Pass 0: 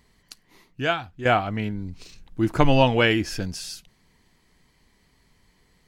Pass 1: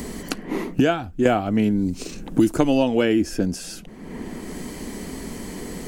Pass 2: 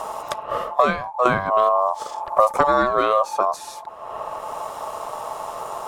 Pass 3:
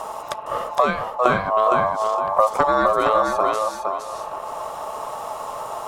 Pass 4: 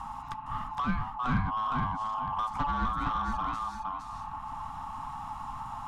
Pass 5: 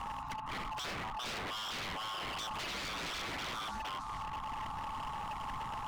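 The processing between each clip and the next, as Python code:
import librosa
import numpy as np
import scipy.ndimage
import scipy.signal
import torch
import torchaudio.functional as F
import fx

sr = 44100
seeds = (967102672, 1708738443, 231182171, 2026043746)

y1 = fx.graphic_eq_10(x, sr, hz=(125, 250, 1000, 2000, 4000, 8000), db=(-10, 5, -8, -8, -8, 4))
y1 = fx.band_squash(y1, sr, depth_pct=100)
y1 = y1 * librosa.db_to_amplitude(4.5)
y2 = fx.low_shelf(y1, sr, hz=290.0, db=9.5)
y2 = y2 * np.sin(2.0 * np.pi * 870.0 * np.arange(len(y2)) / sr)
y2 = y2 * librosa.db_to_amplitude(-1.0)
y3 = fx.echo_feedback(y2, sr, ms=463, feedback_pct=24, wet_db=-4)
y3 = y3 * librosa.db_to_amplitude(-1.0)
y4 = scipy.signal.sosfilt(scipy.signal.ellip(3, 1.0, 40, [270.0, 820.0], 'bandstop', fs=sr, output='sos'), y3)
y4 = 10.0 ** (-19.5 / 20.0) * np.tanh(y4 / 10.0 ** (-19.5 / 20.0))
y4 = fx.riaa(y4, sr, side='playback')
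y4 = y4 * librosa.db_to_amplitude(-6.5)
y5 = 10.0 ** (-35.0 / 20.0) * (np.abs((y4 / 10.0 ** (-35.0 / 20.0) + 3.0) % 4.0 - 2.0) - 1.0)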